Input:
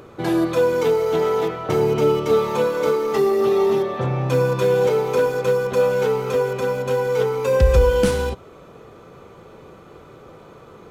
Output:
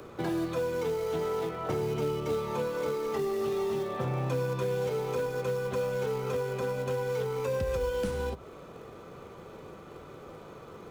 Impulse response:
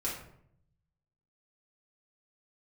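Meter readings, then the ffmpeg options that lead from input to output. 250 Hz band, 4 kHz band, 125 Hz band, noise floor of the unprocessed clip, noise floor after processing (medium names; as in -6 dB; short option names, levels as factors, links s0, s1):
-11.0 dB, -11.0 dB, -10.0 dB, -45 dBFS, -48 dBFS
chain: -filter_complex "[0:a]acrossover=split=140|1800[s0][s1][s2];[s0]acompressor=threshold=0.02:ratio=4[s3];[s1]acompressor=threshold=0.0398:ratio=4[s4];[s2]acompressor=threshold=0.00501:ratio=4[s5];[s3][s4][s5]amix=inputs=3:normalize=0,bandreject=f=60:t=h:w=6,bandreject=f=120:t=h:w=6,acrossover=split=310|500|2100[s6][s7][s8][s9];[s7]acrusher=bits=3:mode=log:mix=0:aa=0.000001[s10];[s6][s10][s8][s9]amix=inputs=4:normalize=0,volume=0.708"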